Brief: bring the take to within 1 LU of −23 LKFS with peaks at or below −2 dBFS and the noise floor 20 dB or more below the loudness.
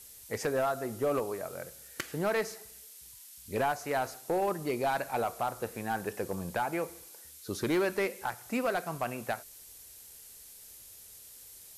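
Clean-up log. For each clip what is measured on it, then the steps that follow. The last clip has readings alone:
share of clipped samples 1.0%; peaks flattened at −23.5 dBFS; background noise floor −52 dBFS; target noise floor −54 dBFS; integrated loudness −33.5 LKFS; sample peak −23.5 dBFS; target loudness −23.0 LKFS
→ clipped peaks rebuilt −23.5 dBFS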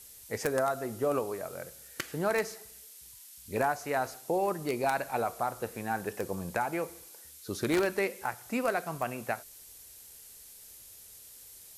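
share of clipped samples 0.0%; background noise floor −52 dBFS; target noise floor −53 dBFS
→ broadband denoise 6 dB, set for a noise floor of −52 dBFS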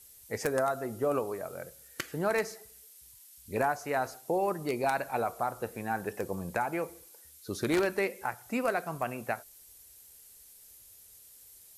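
background noise floor −55 dBFS; integrated loudness −32.5 LKFS; sample peak −14.5 dBFS; target loudness −23.0 LKFS
→ level +9.5 dB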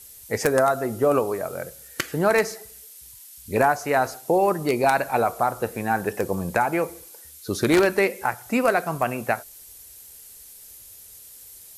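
integrated loudness −23.0 LKFS; sample peak −5.0 dBFS; background noise floor −46 dBFS

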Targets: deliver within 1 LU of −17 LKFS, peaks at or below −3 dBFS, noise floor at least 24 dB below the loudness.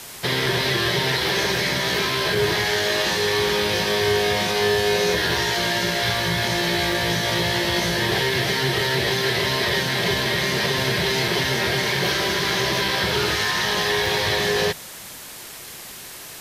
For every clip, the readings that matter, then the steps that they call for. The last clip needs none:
number of dropouts 7; longest dropout 2.1 ms; background noise floor −38 dBFS; target noise floor −45 dBFS; integrated loudness −20.5 LKFS; sample peak −7.5 dBFS; target loudness −17.0 LKFS
→ repair the gap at 0:00.46/0:02.35/0:03.49/0:06.92/0:11.28/0:12.88/0:14.06, 2.1 ms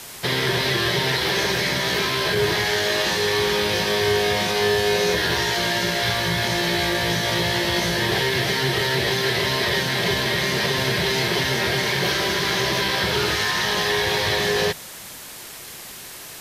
number of dropouts 0; background noise floor −38 dBFS; target noise floor −45 dBFS
→ noise reduction from a noise print 7 dB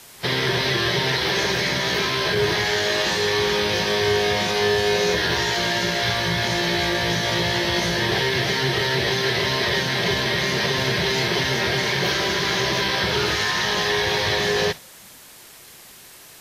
background noise floor −45 dBFS; integrated loudness −20.5 LKFS; sample peak −7.5 dBFS; target loudness −17.0 LKFS
→ level +3.5 dB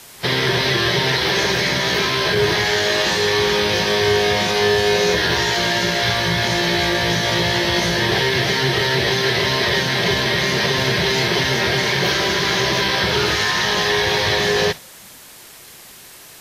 integrated loudness −17.0 LKFS; sample peak −4.0 dBFS; background noise floor −42 dBFS

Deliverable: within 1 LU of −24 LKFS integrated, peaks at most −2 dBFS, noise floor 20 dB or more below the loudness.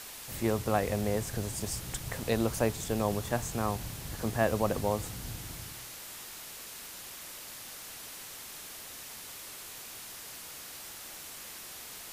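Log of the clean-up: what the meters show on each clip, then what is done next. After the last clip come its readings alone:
background noise floor −45 dBFS; target noise floor −55 dBFS; integrated loudness −35.0 LKFS; sample peak −12.0 dBFS; target loudness −24.0 LKFS
→ broadband denoise 10 dB, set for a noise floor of −45 dBFS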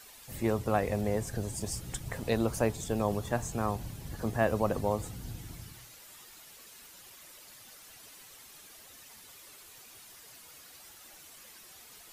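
background noise floor −53 dBFS; integrated loudness −32.5 LKFS; sample peak −12.5 dBFS; target loudness −24.0 LKFS
→ level +8.5 dB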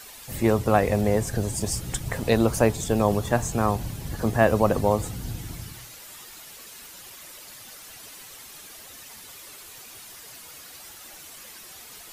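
integrated loudness −24.0 LKFS; sample peak −4.0 dBFS; background noise floor −45 dBFS

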